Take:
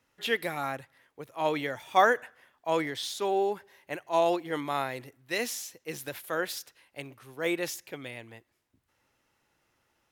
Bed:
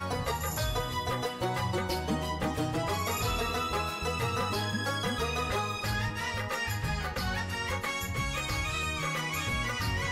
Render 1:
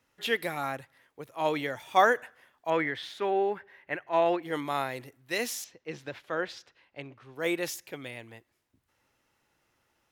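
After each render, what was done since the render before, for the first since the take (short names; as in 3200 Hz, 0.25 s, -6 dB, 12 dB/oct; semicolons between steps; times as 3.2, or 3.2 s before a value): 2.7–4.43 EQ curve 1000 Hz 0 dB, 1800 Hz +7 dB, 6800 Hz -16 dB; 5.64–7.36 air absorption 160 m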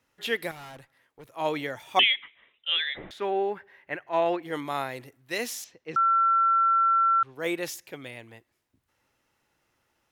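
0.51–1.25 tube stage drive 41 dB, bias 0.6; 1.99–3.11 inverted band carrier 3800 Hz; 5.96–7.23 bleep 1350 Hz -18.5 dBFS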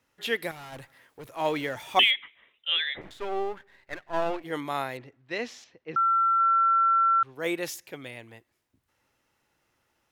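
0.72–2.11 G.711 law mismatch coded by mu; 3.01–4.44 half-wave gain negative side -12 dB; 4.97–6.4 air absorption 170 m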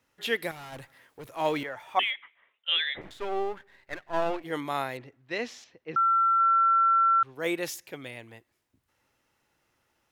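1.63–2.68 three-band isolator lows -12 dB, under 580 Hz, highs -14 dB, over 2000 Hz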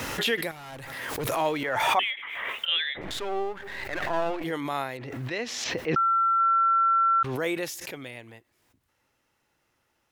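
backwards sustainer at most 28 dB/s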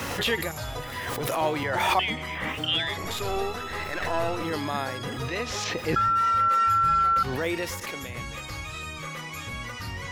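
add bed -4 dB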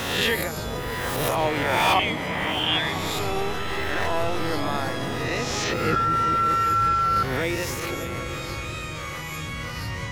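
spectral swells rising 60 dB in 0.94 s; repeats that get brighter 0.199 s, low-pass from 200 Hz, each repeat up 1 oct, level -3 dB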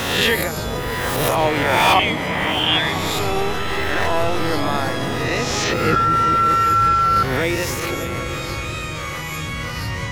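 gain +5.5 dB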